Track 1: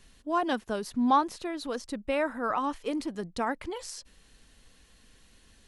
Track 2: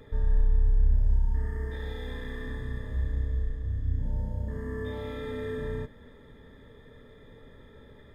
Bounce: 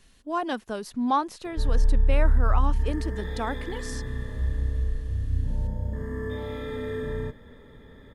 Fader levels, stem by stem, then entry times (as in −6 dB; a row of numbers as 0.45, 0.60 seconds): −0.5, +2.5 decibels; 0.00, 1.45 seconds